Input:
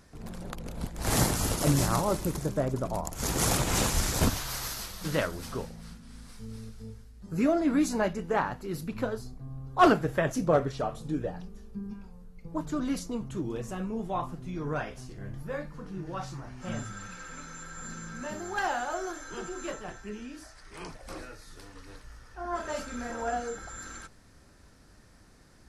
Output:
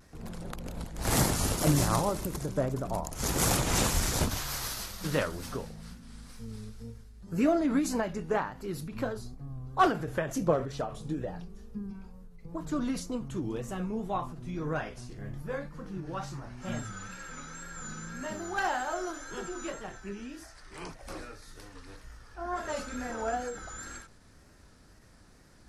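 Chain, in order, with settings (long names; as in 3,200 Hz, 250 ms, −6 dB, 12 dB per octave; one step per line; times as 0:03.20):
tape wow and flutter 72 cents
every ending faded ahead of time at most 110 dB per second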